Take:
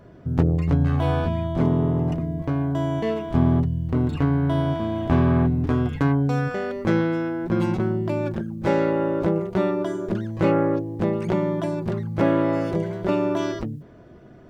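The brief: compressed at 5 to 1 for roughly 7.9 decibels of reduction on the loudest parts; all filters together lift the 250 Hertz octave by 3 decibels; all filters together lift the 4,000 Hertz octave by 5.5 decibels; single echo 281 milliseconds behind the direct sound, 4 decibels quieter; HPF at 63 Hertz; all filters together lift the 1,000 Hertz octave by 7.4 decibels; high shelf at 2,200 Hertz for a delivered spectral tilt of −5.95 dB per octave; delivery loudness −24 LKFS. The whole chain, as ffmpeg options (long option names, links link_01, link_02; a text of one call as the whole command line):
ffmpeg -i in.wav -af "highpass=63,equalizer=frequency=250:width_type=o:gain=3.5,equalizer=frequency=1000:width_type=o:gain=8,highshelf=frequency=2200:gain=3.5,equalizer=frequency=4000:width_type=o:gain=3.5,acompressor=threshold=-20dB:ratio=5,aecho=1:1:281:0.631,volume=-0.5dB" out.wav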